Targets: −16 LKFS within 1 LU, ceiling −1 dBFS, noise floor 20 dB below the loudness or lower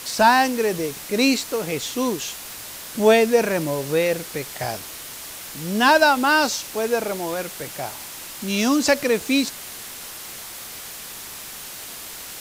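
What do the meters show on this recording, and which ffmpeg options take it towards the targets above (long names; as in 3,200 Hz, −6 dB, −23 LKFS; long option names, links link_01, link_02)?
background noise floor −37 dBFS; target noise floor −41 dBFS; integrated loudness −21.0 LKFS; sample peak −3.0 dBFS; target loudness −16.0 LKFS
→ -af "afftdn=noise_reduction=6:noise_floor=-37"
-af "volume=5dB,alimiter=limit=-1dB:level=0:latency=1"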